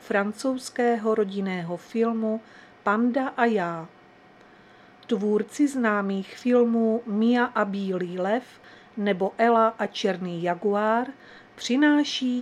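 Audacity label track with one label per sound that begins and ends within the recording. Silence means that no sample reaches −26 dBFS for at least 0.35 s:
2.860000	3.810000	sound
5.100000	8.390000	sound
8.980000	11.090000	sound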